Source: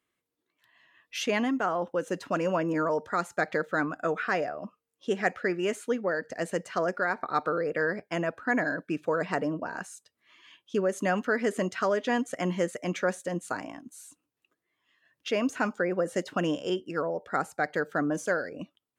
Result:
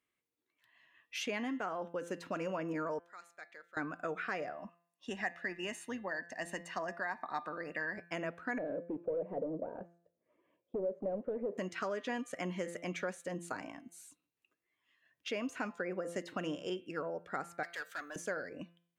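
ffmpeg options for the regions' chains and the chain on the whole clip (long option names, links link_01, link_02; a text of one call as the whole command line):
ffmpeg -i in.wav -filter_complex "[0:a]asettb=1/sr,asplit=3[link_01][link_02][link_03];[link_01]atrim=end=2.994[link_04];[link_02]atrim=start=2.99:end=3.77,asetpts=PTS-STARTPTS,afade=type=in:duration=0.004:curve=qsin,afade=type=out:start_time=0.776:duration=0.004:curve=qsin,lowpass=frequency=1800:poles=1,aderivative[link_05];[link_03]atrim=start=3.766[link_06];[link_04][link_05]acrossfade=duration=0.004:curve1=hsin:curve2=qsin[link_07];[link_07][link_06]acrossfade=duration=0.004:curve1=qsin:curve2=hsin,asettb=1/sr,asplit=3[link_08][link_09][link_10];[link_08]atrim=end=4.534[link_11];[link_09]atrim=start=4.53:end=7.98,asetpts=PTS-STARTPTS,afade=type=in:duration=0.004:curve=qsin,afade=type=out:start_time=3.446:duration=0.004:curve=qsin,highpass=220,aecho=1:1:1.1:0.7,atrim=end_sample=152145,tremolo=f=140:d=0.182[link_12];[link_10]atrim=start=7.976[link_13];[link_11][link_12]acrossfade=duration=0.004:curve1=hsin:curve2=qsin[link_14];[link_14][link_13]acrossfade=duration=0.004:curve1=qsin:curve2=hsin,asettb=1/sr,asplit=3[link_15][link_16][link_17];[link_15]atrim=end=8.584[link_18];[link_16]atrim=start=8.58:end=11.58,asetpts=PTS-STARTPTS,afade=type=in:duration=0.004:curve=qsin,afade=type=out:start_time=2.996:duration=0.004:curve=qsin,asoftclip=type=hard:threshold=-30dB,lowpass=frequency=540:width_type=q:width=5.1[link_19];[link_17]atrim=start=11.576[link_20];[link_18][link_19]acrossfade=duration=0.004:curve1=hsin:curve2=qsin[link_21];[link_21][link_20]acrossfade=duration=0.004:curve1=qsin:curve2=hsin,asettb=1/sr,asplit=3[link_22][link_23][link_24];[link_22]atrim=end=17.634[link_25];[link_23]atrim=start=17.63:end=18.16,asetpts=PTS-STARTPTS,afade=type=in:duration=0.004:curve=qsin,afade=type=out:start_time=0.526:duration=0.004:curve=qsin,aderivative,asplit=2[link_26][link_27];[link_27]highpass=frequency=720:poles=1,volume=22dB,asoftclip=type=tanh:threshold=-24.5dB[link_28];[link_26][link_28]amix=inputs=2:normalize=0,lowpass=frequency=4100:poles=1,volume=-6dB[link_29];[link_24]atrim=start=18.156[link_30];[link_25][link_29]acrossfade=duration=0.004:curve1=hsin:curve2=qsin[link_31];[link_31][link_30]acrossfade=duration=0.004:curve1=qsin:curve2=hsin,equalizer=frequency=2300:width=2.8:gain=4.5,bandreject=frequency=171.4:width_type=h:width=4,bandreject=frequency=342.8:width_type=h:width=4,bandreject=frequency=514.2:width_type=h:width=4,bandreject=frequency=685.6:width_type=h:width=4,bandreject=frequency=857:width_type=h:width=4,bandreject=frequency=1028.4:width_type=h:width=4,bandreject=frequency=1199.8:width_type=h:width=4,bandreject=frequency=1371.2:width_type=h:width=4,bandreject=frequency=1542.6:width_type=h:width=4,bandreject=frequency=1714:width_type=h:width=4,bandreject=frequency=1885.4:width_type=h:width=4,bandreject=frequency=2056.8:width_type=h:width=4,bandreject=frequency=2228.2:width_type=h:width=4,bandreject=frequency=2399.6:width_type=h:width=4,bandreject=frequency=2571:width_type=h:width=4,bandreject=frequency=2742.4:width_type=h:width=4,bandreject=frequency=2913.8:width_type=h:width=4,bandreject=frequency=3085.2:width_type=h:width=4,bandreject=frequency=3256.6:width_type=h:width=4,bandreject=frequency=3428:width_type=h:width=4,bandreject=frequency=3599.4:width_type=h:width=4,bandreject=frequency=3770.8:width_type=h:width=4,bandreject=frequency=3942.2:width_type=h:width=4,bandreject=frequency=4113.6:width_type=h:width=4,bandreject=frequency=4285:width_type=h:width=4,acompressor=threshold=-29dB:ratio=2.5,volume=-6.5dB" out.wav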